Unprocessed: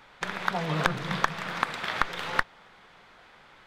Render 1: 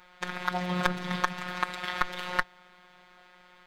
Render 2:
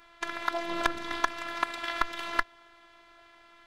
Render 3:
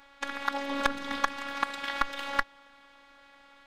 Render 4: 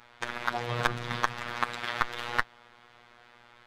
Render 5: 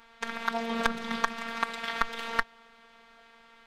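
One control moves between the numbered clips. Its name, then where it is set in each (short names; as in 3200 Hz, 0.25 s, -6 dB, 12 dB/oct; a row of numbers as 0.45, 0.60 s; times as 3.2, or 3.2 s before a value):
robotiser, frequency: 180, 340, 280, 120, 230 Hz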